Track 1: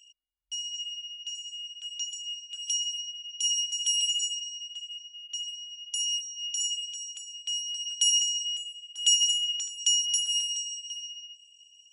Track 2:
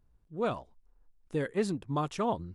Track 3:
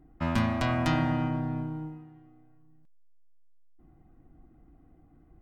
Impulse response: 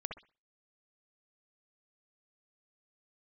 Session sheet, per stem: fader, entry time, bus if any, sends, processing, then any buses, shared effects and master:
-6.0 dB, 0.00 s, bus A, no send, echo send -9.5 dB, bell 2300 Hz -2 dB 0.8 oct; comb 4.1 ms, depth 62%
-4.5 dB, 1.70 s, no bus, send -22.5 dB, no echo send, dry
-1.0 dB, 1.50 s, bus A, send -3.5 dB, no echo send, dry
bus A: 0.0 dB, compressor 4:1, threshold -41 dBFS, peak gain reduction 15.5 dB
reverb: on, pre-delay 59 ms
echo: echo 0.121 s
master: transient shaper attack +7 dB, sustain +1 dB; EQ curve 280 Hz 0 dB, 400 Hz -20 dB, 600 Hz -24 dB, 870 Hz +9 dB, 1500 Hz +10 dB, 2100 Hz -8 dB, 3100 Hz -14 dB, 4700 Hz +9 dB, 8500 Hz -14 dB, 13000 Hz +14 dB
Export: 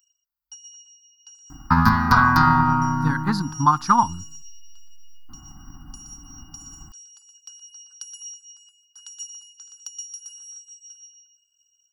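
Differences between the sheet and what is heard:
stem 1: missing comb 4.1 ms, depth 62%; stem 2 -4.5 dB -> +6.5 dB; stem 3 -1.0 dB -> +10.5 dB

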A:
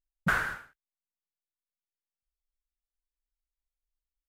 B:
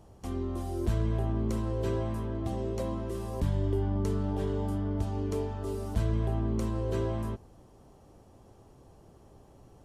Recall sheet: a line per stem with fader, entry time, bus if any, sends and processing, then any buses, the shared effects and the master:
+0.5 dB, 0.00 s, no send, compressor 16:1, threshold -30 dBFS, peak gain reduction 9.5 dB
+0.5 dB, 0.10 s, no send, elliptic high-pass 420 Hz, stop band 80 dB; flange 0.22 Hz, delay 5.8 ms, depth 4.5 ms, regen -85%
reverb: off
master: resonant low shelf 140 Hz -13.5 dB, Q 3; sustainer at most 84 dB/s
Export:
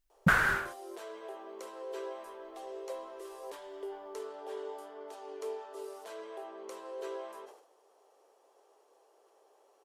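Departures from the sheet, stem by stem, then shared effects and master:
stem A +0.5 dB -> +9.0 dB; master: missing resonant low shelf 140 Hz -13.5 dB, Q 3

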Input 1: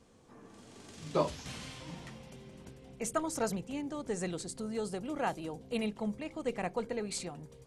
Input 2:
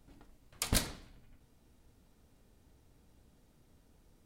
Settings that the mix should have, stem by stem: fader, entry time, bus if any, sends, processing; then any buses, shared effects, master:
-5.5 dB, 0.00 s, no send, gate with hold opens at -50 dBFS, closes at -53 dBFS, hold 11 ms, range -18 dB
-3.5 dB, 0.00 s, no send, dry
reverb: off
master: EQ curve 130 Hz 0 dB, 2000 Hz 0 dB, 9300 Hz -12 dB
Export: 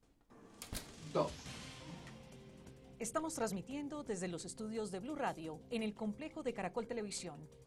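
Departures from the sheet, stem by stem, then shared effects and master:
stem 2 -3.5 dB -> -14.5 dB; master: missing EQ curve 130 Hz 0 dB, 2000 Hz 0 dB, 9300 Hz -12 dB

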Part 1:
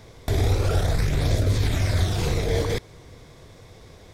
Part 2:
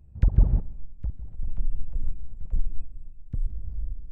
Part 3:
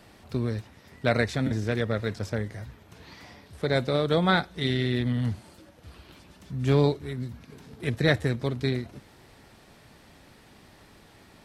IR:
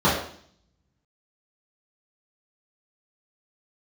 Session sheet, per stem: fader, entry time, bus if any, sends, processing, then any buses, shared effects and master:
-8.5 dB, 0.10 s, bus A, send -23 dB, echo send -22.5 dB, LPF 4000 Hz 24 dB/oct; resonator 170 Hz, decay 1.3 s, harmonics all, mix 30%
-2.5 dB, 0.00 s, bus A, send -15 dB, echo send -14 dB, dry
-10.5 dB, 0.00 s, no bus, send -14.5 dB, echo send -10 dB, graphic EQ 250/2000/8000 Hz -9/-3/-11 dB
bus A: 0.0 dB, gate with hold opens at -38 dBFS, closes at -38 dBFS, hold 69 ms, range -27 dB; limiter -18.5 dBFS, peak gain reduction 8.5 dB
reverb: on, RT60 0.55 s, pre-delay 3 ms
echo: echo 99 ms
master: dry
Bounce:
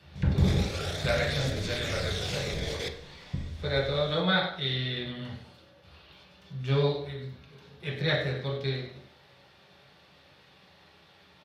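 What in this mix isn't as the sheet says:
stem 1: missing LPF 4000 Hz 24 dB/oct; master: extra weighting filter D

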